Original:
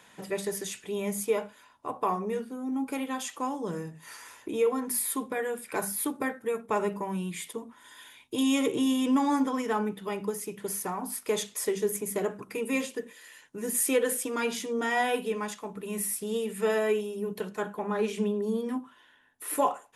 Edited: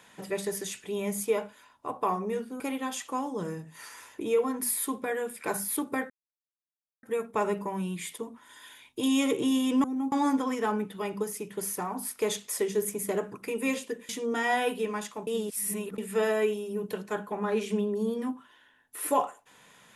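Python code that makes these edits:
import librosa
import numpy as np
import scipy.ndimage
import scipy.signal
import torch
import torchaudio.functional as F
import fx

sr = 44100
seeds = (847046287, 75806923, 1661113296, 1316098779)

y = fx.edit(x, sr, fx.move(start_s=2.6, length_s=0.28, to_s=9.19),
    fx.insert_silence(at_s=6.38, length_s=0.93),
    fx.cut(start_s=13.16, length_s=1.4),
    fx.reverse_span(start_s=15.74, length_s=0.71), tone=tone)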